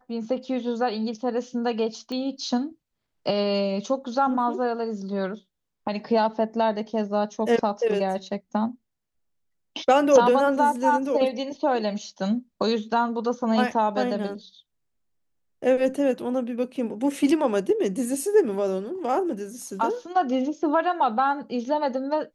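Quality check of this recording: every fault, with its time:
2.12 pop -21 dBFS

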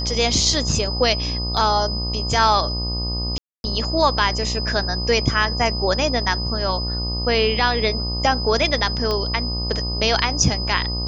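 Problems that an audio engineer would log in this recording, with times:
buzz 60 Hz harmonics 21 -26 dBFS
tone 5000 Hz -26 dBFS
1.57 gap 2.6 ms
3.38–3.64 gap 0.261 s
9.11 pop -11 dBFS

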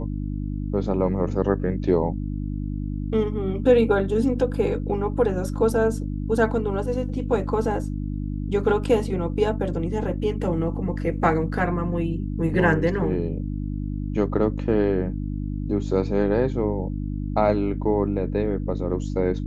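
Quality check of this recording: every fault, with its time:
hum 50 Hz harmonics 6 -28 dBFS

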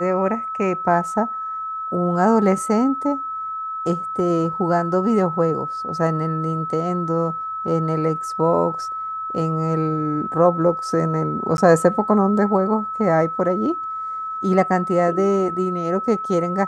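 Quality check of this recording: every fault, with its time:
tone 1300 Hz -25 dBFS
11.57–11.58 gap 11 ms

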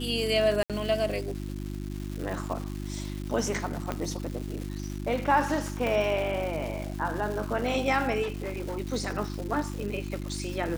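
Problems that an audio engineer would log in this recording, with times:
crackle 490/s -35 dBFS
hum 50 Hz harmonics 7 -35 dBFS
0.63–0.7 gap 67 ms
3.92 pop -16 dBFS
5.87 pop
8.22–8.78 clipped -28.5 dBFS

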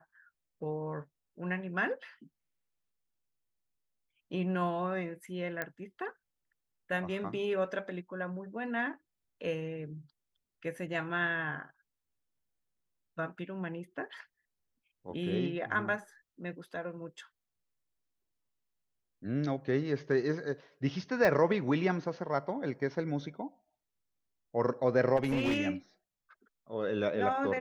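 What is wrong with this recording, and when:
5.62 pop -20 dBFS
21.25 pop -16 dBFS
25.16–25.59 clipped -25.5 dBFS

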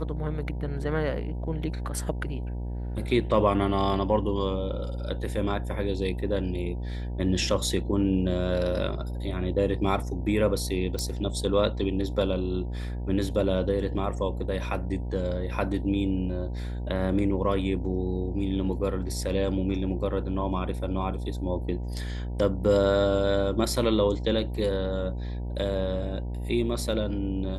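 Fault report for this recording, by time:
buzz 60 Hz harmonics 16 -32 dBFS
10.99 pop

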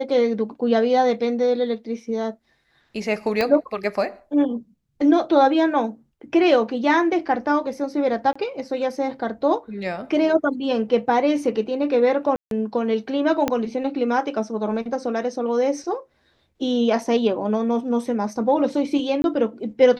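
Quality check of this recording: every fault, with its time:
3.41 pop -9 dBFS
8.33–8.36 gap 25 ms
12.36–12.51 gap 0.152 s
13.48 pop -7 dBFS
19.22–19.24 gap 21 ms

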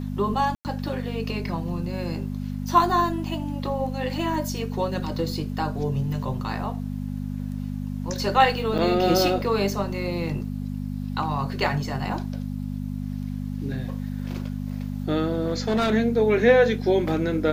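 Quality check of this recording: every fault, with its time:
hum 50 Hz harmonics 5 -30 dBFS
0.55–0.65 gap 99 ms
8.78–8.79 gap 6.2 ms
15.41–15.94 clipped -18 dBFS

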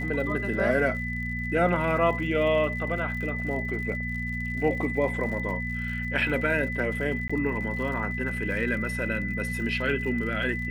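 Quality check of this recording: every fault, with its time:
crackle 80/s -37 dBFS
hum 60 Hz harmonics 4 -33 dBFS
tone 2000 Hz -32 dBFS
7.28–7.29 gap 15 ms

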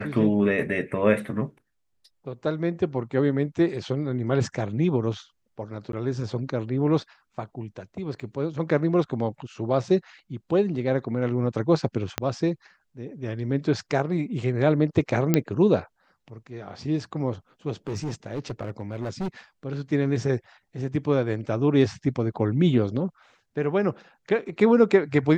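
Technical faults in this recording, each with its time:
5.92–5.93 gap 12 ms
8.2 gap 3.1 ms
12.18 pop -8 dBFS
15.34 pop -6 dBFS
17.87–19.28 clipped -25.5 dBFS

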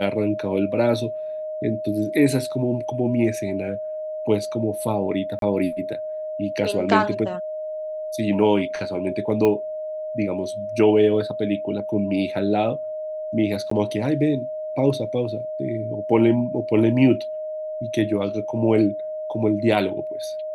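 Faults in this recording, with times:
tone 620 Hz -27 dBFS
5.39–5.42 gap 32 ms
9.45 pop -10 dBFS
13.7–13.71 gap 14 ms

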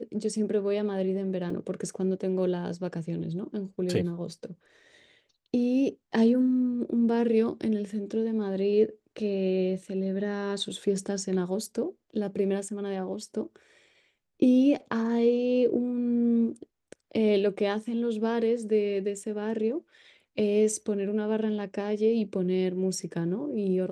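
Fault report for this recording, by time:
1.5 gap 3.1 ms

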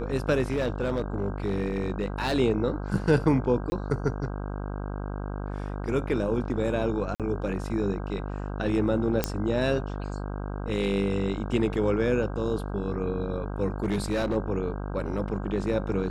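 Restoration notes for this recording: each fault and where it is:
buzz 50 Hz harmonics 32 -33 dBFS
0.51–2.34 clipped -21.5 dBFS
3.7–3.72 gap 20 ms
7.15–7.2 gap 47 ms
9.24 pop -8 dBFS
13.83–14.37 clipped -22 dBFS

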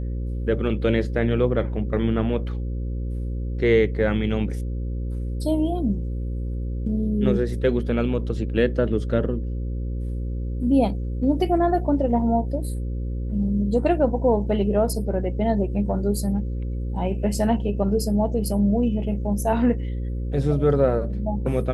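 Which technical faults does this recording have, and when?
buzz 60 Hz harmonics 9 -27 dBFS

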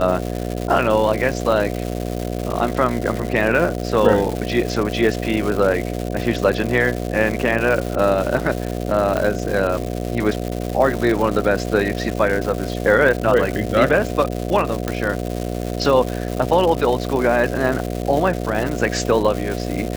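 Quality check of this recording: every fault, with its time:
buzz 60 Hz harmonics 12 -25 dBFS
crackle 330/s -23 dBFS
9.17 pop -8 dBFS
14.88 pop

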